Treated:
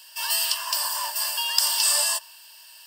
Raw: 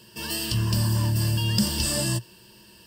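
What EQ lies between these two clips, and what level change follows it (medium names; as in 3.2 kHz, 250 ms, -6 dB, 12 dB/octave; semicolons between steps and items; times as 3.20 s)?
steep high-pass 620 Hz 72 dB/octave; tilt EQ +2 dB/octave; dynamic bell 1 kHz, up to +7 dB, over -53 dBFS, Q 1.7; +1.0 dB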